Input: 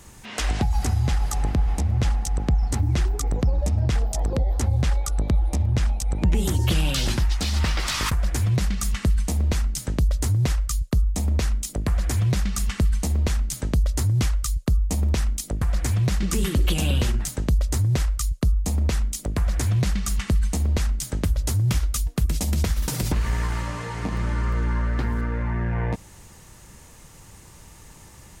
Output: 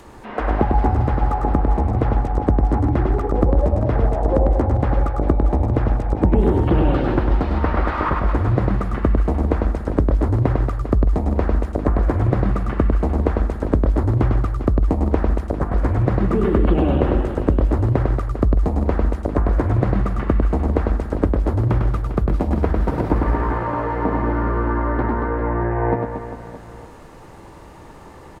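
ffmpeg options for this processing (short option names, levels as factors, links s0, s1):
-filter_complex "[0:a]firequalizer=gain_entry='entry(170,0);entry(290,10);entry(4300,9);entry(6200,1)':delay=0.05:min_phase=1,aecho=1:1:100|230|399|618.7|904.3:0.631|0.398|0.251|0.158|0.1,acrossover=split=1400[s0][s1];[s1]acompressor=threshold=0.00126:ratio=6[s2];[s0][s2]amix=inputs=2:normalize=0,volume=1.12"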